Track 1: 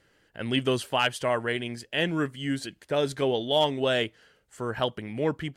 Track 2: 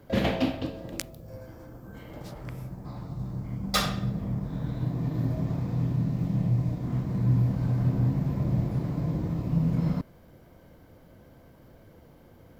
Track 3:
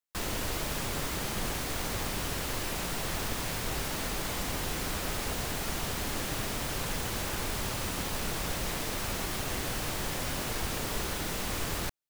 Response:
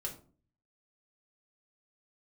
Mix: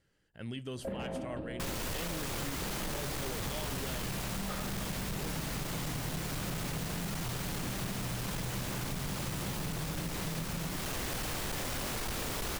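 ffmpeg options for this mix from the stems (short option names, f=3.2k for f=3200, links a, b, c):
-filter_complex "[0:a]bass=f=250:g=9,treble=f=4k:g=5,volume=-14dB,asplit=2[a][b];[b]volume=-17dB[c];[1:a]lowpass=1.6k,acompressor=threshold=-29dB:ratio=6,adelay=750,volume=-1dB,asplit=2[d][e];[e]volume=-8.5dB[f];[2:a]asoftclip=type=hard:threshold=-33dB,adelay=1450,volume=1.5dB[g];[a][d]amix=inputs=2:normalize=0,alimiter=level_in=6.5dB:limit=-24dB:level=0:latency=1:release=172,volume=-6.5dB,volume=0dB[h];[3:a]atrim=start_sample=2205[i];[c][f]amix=inputs=2:normalize=0[j];[j][i]afir=irnorm=-1:irlink=0[k];[g][h][k]amix=inputs=3:normalize=0,acompressor=threshold=-33dB:ratio=6"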